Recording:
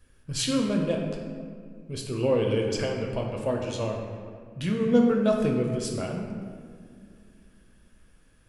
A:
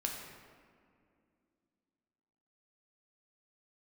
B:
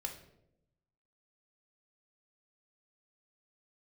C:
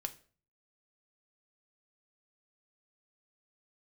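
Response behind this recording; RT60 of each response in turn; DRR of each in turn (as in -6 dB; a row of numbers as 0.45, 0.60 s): A; 2.3, 0.85, 0.40 s; 0.0, 3.5, 7.0 dB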